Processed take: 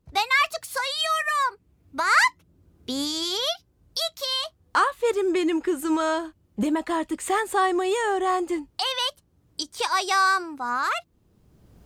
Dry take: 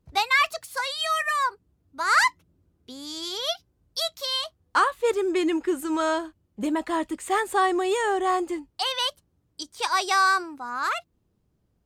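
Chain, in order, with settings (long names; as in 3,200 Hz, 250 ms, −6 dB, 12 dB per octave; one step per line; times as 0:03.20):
camcorder AGC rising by 20 dB per second
0:01.47–0:02.25: parametric band 2,300 Hz +6 dB 0.5 octaves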